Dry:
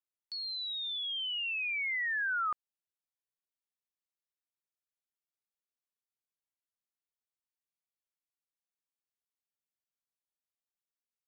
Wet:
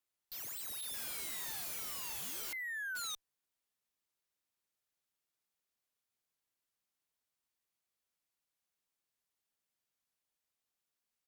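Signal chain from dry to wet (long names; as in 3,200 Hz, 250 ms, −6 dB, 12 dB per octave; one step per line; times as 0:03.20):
single-tap delay 621 ms −13.5 dB
wrap-around overflow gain 42.5 dB
harmonic generator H 8 −22 dB, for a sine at −42.5 dBFS
level +5.5 dB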